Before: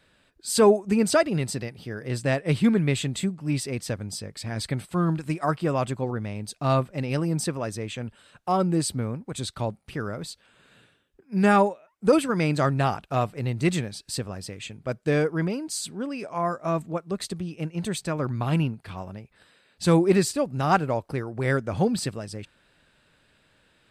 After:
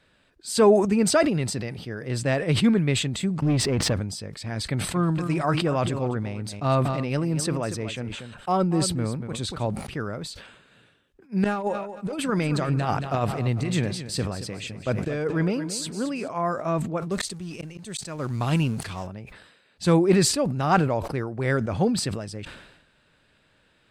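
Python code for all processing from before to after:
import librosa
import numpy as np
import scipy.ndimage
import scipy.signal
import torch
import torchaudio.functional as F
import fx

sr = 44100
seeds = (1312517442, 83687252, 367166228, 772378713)

y = fx.chain(x, sr, fx.lowpass(hz=1500.0, slope=6),
    fx.leveller(passes=2),
    fx.pre_swell(db_per_s=21.0), at=(3.42, 3.93))
y = fx.chain(y, sr, fx.echo_single(ms=237, db=-13.5),
    fx.sustainer(db_per_s=42.0), at=(4.65, 9.67))
y = fx.chain(y, sr, fx.clip_hard(threshold_db=-11.5),
    fx.over_compress(threshold_db=-24.0, ratio=-0.5),
    fx.echo_feedback(ms=226, feedback_pct=33, wet_db=-12.0), at=(11.44, 16.28))
y = fx.chain(y, sr, fx.law_mismatch(coded='mu'),
    fx.peak_eq(hz=7700.0, db=11.5, octaves=1.9),
    fx.auto_swell(attack_ms=392.0), at=(17.11, 19.07))
y = fx.high_shelf(y, sr, hz=11000.0, db=-10.5)
y = fx.sustainer(y, sr, db_per_s=59.0)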